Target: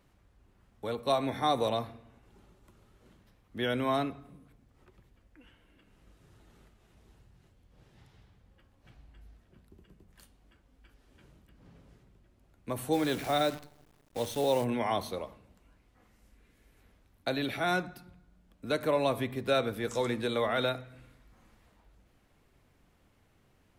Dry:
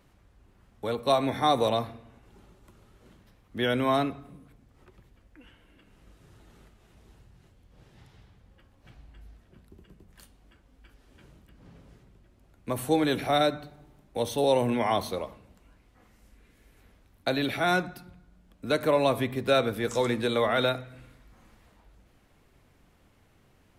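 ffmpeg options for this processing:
ffmpeg -i in.wav -filter_complex "[0:a]asplit=3[link_01][link_02][link_03];[link_01]afade=type=out:start_time=12.92:duration=0.02[link_04];[link_02]acrusher=bits=7:dc=4:mix=0:aa=0.000001,afade=type=in:start_time=12.92:duration=0.02,afade=type=out:start_time=14.63:duration=0.02[link_05];[link_03]afade=type=in:start_time=14.63:duration=0.02[link_06];[link_04][link_05][link_06]amix=inputs=3:normalize=0,volume=-4.5dB" out.wav

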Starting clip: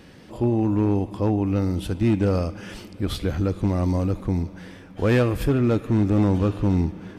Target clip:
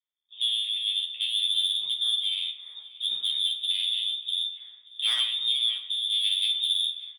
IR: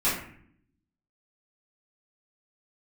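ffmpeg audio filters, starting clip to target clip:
-filter_complex "[0:a]afwtdn=0.0282,lowpass=frequency=3100:width_type=q:width=0.5098,lowpass=frequency=3100:width_type=q:width=0.6013,lowpass=frequency=3100:width_type=q:width=0.9,lowpass=frequency=3100:width_type=q:width=2.563,afreqshift=-3700,alimiter=limit=-13.5dB:level=0:latency=1:release=36,tremolo=f=0.61:d=0.41,asoftclip=type=tanh:threshold=-19.5dB,aeval=exprs='val(0)*sin(2*PI*56*n/s)':channel_layout=same,asplit=2[link_01][link_02];[link_02]adelay=13,volume=-3dB[link_03];[link_01][link_03]amix=inputs=2:normalize=0,agate=range=-33dB:threshold=-40dB:ratio=3:detection=peak,asplit=2[link_04][link_05];[link_05]adelay=583.1,volume=-17dB,highshelf=frequency=4000:gain=-13.1[link_06];[link_04][link_06]amix=inputs=2:normalize=0,asplit=2[link_07][link_08];[1:a]atrim=start_sample=2205[link_09];[link_08][link_09]afir=irnorm=-1:irlink=0,volume=-15.5dB[link_10];[link_07][link_10]amix=inputs=2:normalize=0"

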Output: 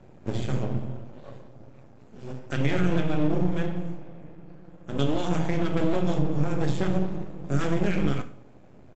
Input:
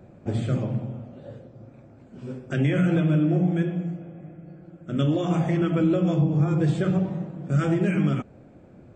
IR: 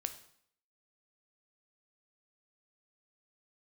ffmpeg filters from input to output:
-filter_complex "[0:a]highshelf=frequency=4800:gain=10.5,aresample=16000,aeval=exprs='max(val(0),0)':channel_layout=same,aresample=44100[link_01];[1:a]atrim=start_sample=2205,asetrate=57330,aresample=44100[link_02];[link_01][link_02]afir=irnorm=-1:irlink=0,volume=4dB"

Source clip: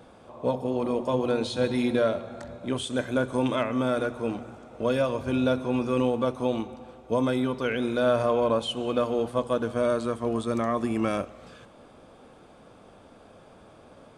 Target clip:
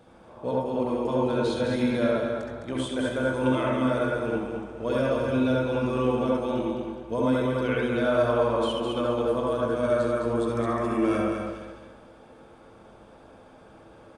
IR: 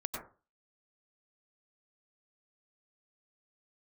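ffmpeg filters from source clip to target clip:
-filter_complex "[0:a]aecho=1:1:209|418|627|836:0.562|0.186|0.0612|0.0202[link_01];[1:a]atrim=start_sample=2205,asetrate=61740,aresample=44100[link_02];[link_01][link_02]afir=irnorm=-1:irlink=0"

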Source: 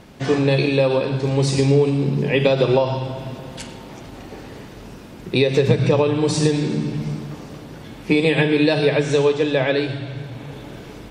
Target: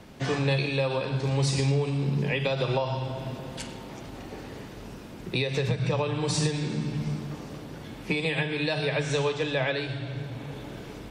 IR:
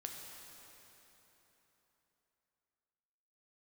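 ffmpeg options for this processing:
-filter_complex "[0:a]acrossover=split=200|560|3100[link_01][link_02][link_03][link_04];[link_02]acompressor=threshold=-34dB:ratio=6[link_05];[link_01][link_05][link_03][link_04]amix=inputs=4:normalize=0,alimiter=limit=-12dB:level=0:latency=1:release=484,volume=-3.5dB"

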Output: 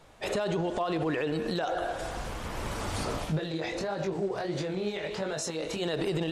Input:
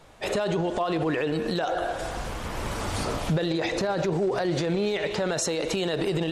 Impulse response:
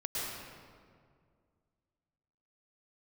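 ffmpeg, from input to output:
-filter_complex "[0:a]asplit=3[link_01][link_02][link_03];[link_01]afade=type=out:start_time=3.24:duration=0.02[link_04];[link_02]flanger=delay=19.5:depth=6.5:speed=1.5,afade=type=in:start_time=3.24:duration=0.02,afade=type=out:start_time=5.8:duration=0.02[link_05];[link_03]afade=type=in:start_time=5.8:duration=0.02[link_06];[link_04][link_05][link_06]amix=inputs=3:normalize=0,volume=-3.5dB"

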